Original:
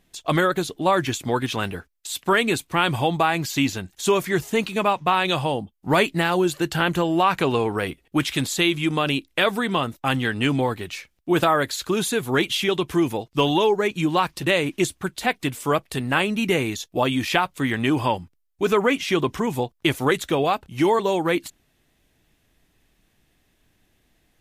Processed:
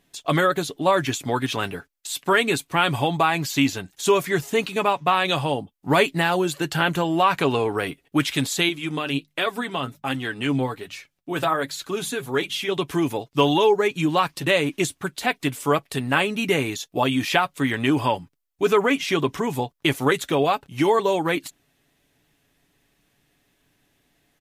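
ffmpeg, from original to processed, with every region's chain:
ffmpeg -i in.wav -filter_complex "[0:a]asettb=1/sr,asplit=3[link_01][link_02][link_03];[link_01]atrim=end=8.694[link_04];[link_02]atrim=start=8.69:end=12.77,asetpts=PTS-STARTPTS,afade=type=in:duration=0.004:curve=qsin,afade=type=out:start_time=4.076:duration=0.004:curve=qsin,bandreject=frequency=50:width_type=h:width=6,bandreject=frequency=100:width_type=h:width=6,bandreject=frequency=150:width_type=h:width=6,bandreject=frequency=200:width_type=h:width=6,flanger=delay=2.7:depth=5.1:regen=56:speed=1.3:shape=sinusoidal[link_05];[link_03]atrim=start=12.766[link_06];[link_04][link_05]acrossfade=duration=0.004:curve1=hsin:curve2=qsin[link_07];[link_07][link_06]acrossfade=duration=0.004:curve1=qsin:curve2=hsin,lowshelf=frequency=68:gain=-11.5,aecho=1:1:7.1:0.35" out.wav

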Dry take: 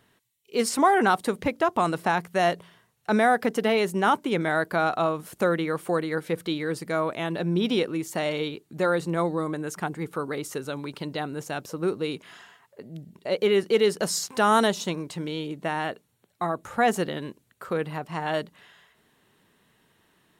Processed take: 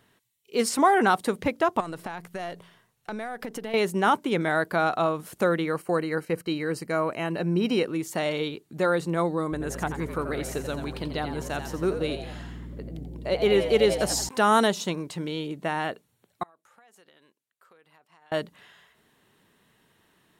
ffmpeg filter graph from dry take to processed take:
ffmpeg -i in.wav -filter_complex "[0:a]asettb=1/sr,asplit=3[link_01][link_02][link_03];[link_01]atrim=end=1.804[link_04];[link_02]atrim=start=1.8:end=3.74,asetpts=PTS-STARTPTS,afade=type=in:duration=0.004:curve=qsin,afade=type=out:start_time=1.936:duration=0.004:curve=qsin,aeval=exprs='if(lt(val(0),0),0.708*val(0),val(0))':channel_layout=same,acompressor=threshold=-30dB:ratio=8:attack=3.2:release=140:knee=1:detection=peak[link_05];[link_03]atrim=start=3.736[link_06];[link_04][link_05]acrossfade=duration=0.004:curve1=hsin:curve2=qsin[link_07];[link_07][link_06]acrossfade=duration=0.004:curve1=qsin:curve2=hsin,asettb=1/sr,asplit=3[link_08][link_09][link_10];[link_08]atrim=end=5.744[link_11];[link_09]atrim=start=5.74:end=7.85,asetpts=PTS-STARTPTS,afade=type=in:duration=0.004:curve=qsin,afade=type=out:start_time=2.106:duration=0.004:curve=qsin,agate=range=-8dB:threshold=-43dB:ratio=16:release=100:detection=peak,asuperstop=centerf=3500:order=8:qfactor=5.4[link_12];[link_10]atrim=start=7.846[link_13];[link_11][link_12]acrossfade=duration=0.004:curve1=hsin:curve2=qsin[link_14];[link_14][link_13]acrossfade=duration=0.004:curve1=qsin:curve2=hsin,asettb=1/sr,asplit=3[link_15][link_16][link_17];[link_15]atrim=end=9.524[link_18];[link_16]atrim=start=9.52:end=14.29,asetpts=PTS-STARTPTS,afade=type=in:duration=0.004:curve=qsin,afade=type=out:start_time=4.766:duration=0.004:curve=qsin,aeval=exprs='val(0)+0.0126*(sin(2*PI*60*n/s)+sin(2*PI*2*60*n/s)/2+sin(2*PI*3*60*n/s)/3+sin(2*PI*4*60*n/s)/4+sin(2*PI*5*60*n/s)/5)':channel_layout=same,asplit=6[link_19][link_20][link_21][link_22][link_23][link_24];[link_20]adelay=86,afreqshift=100,volume=-9dB[link_25];[link_21]adelay=172,afreqshift=200,volume=-15.4dB[link_26];[link_22]adelay=258,afreqshift=300,volume=-21.8dB[link_27];[link_23]adelay=344,afreqshift=400,volume=-28.1dB[link_28];[link_24]adelay=430,afreqshift=500,volume=-34.5dB[link_29];[link_19][link_25][link_26][link_27][link_28][link_29]amix=inputs=6:normalize=0,atrim=end_sample=210357[link_30];[link_17]atrim=start=14.286[link_31];[link_18][link_30]acrossfade=duration=0.004:curve1=hsin:curve2=qsin[link_32];[link_32][link_31]acrossfade=duration=0.004:curve1=qsin:curve2=hsin,asettb=1/sr,asplit=3[link_33][link_34][link_35];[link_33]atrim=end=16.434[link_36];[link_34]atrim=start=16.43:end=18.32,asetpts=PTS-STARTPTS,afade=type=in:duration=0.004:curve=qsin,afade=type=out:start_time=1.886:duration=0.004:curve=qsin,lowpass=frequency=1000:poles=1,aderivative,acompressor=threshold=-52dB:ratio=10:attack=3.2:release=140:knee=1:detection=peak[link_37];[link_35]atrim=start=18.316[link_38];[link_36][link_37]acrossfade=duration=0.004:curve1=hsin:curve2=qsin[link_39];[link_39][link_38]acrossfade=duration=0.004:curve1=qsin:curve2=hsin" out.wav

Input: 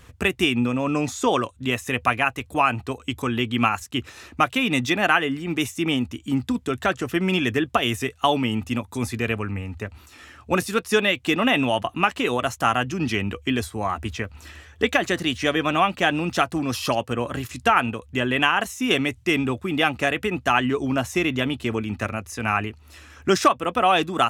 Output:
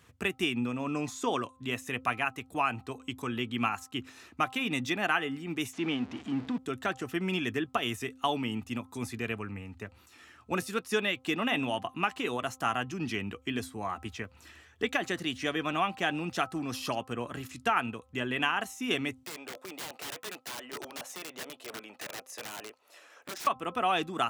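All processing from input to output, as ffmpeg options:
ffmpeg -i in.wav -filter_complex "[0:a]asettb=1/sr,asplit=3[link_01][link_02][link_03];[link_01]atrim=end=5.734[link_04];[link_02]atrim=start=5.73:end=6.58,asetpts=PTS-STARTPTS,afade=type=in:duration=0.004:curve=qsin,afade=type=out:start_time=0.846:duration=0.004:curve=qsin,aeval=exprs='val(0)+0.5*0.0376*sgn(val(0))':channel_layout=same,highpass=140,lowpass=3500[link_05];[link_03]atrim=start=6.576[link_06];[link_04][link_05]acrossfade=duration=0.004:curve1=hsin:curve2=qsin[link_07];[link_07][link_06]acrossfade=duration=0.004:curve1=qsin:curve2=hsin,asettb=1/sr,asplit=3[link_08][link_09][link_10];[link_08]atrim=end=19.234[link_11];[link_09]atrim=start=19.23:end=23.47,asetpts=PTS-STARTPTS,afade=type=in:duration=0.004:curve=qsin,afade=type=out:start_time=4.236:duration=0.004:curve=qsin,acompressor=threshold=-25dB:ratio=12:attack=3.2:release=140:knee=1:detection=peak,highpass=frequency=560:width_type=q:width=4.3,aeval=exprs='(mod(17.8*val(0)+1,2)-1)/17.8':channel_layout=same[link_12];[link_10]atrim=start=23.466[link_13];[link_11][link_12]acrossfade=duration=0.004:curve1=hsin:curve2=qsin[link_14];[link_14][link_13]acrossfade=duration=0.004:curve1=qsin:curve2=hsin,highpass=110,equalizer=frequency=550:width_type=o:width=0.23:gain=-4.5,bandreject=frequency=260.3:width_type=h:width=4,bandreject=frequency=520.6:width_type=h:width=4,bandreject=frequency=780.9:width_type=h:width=4,bandreject=frequency=1041.2:width_type=h:width=4,bandreject=frequency=1301.5:width_type=h:width=4,volume=-9dB" out.wav

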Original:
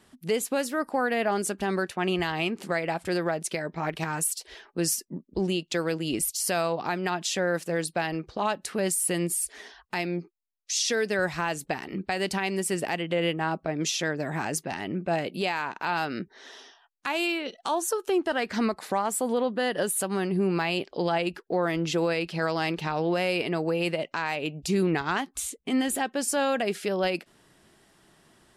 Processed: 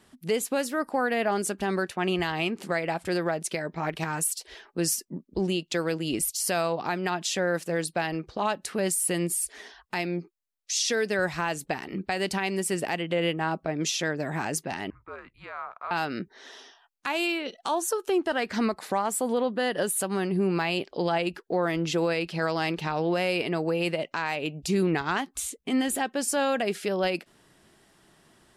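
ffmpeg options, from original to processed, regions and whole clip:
ffmpeg -i in.wav -filter_complex "[0:a]asettb=1/sr,asplit=3[link_01][link_02][link_03];[link_01]atrim=end=14.904[link_04];[link_02]atrim=start=14.9:end=15.91,asetpts=PTS-STARTPTS,afade=type=in:duration=0.004:curve=qsin,afade=type=out:start_time=1.006:duration=0.004:curve=qsin,bandpass=frequency=1400:width_type=q:width=4.2,afreqshift=-240[link_05];[link_03]atrim=start=15.906[link_06];[link_04][link_05]acrossfade=duration=0.004:curve1=hsin:curve2=qsin[link_07];[link_07][link_06]acrossfade=duration=0.004:curve1=qsin:curve2=hsin" out.wav

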